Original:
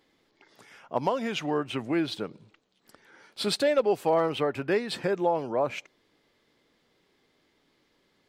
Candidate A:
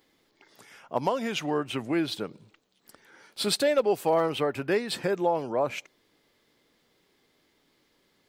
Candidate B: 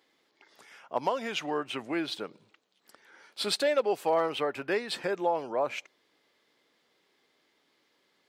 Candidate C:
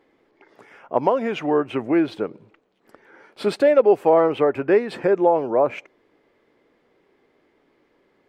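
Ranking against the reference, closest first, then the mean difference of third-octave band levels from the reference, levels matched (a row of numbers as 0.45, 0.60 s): A, B, C; 1.0, 3.0, 5.0 dB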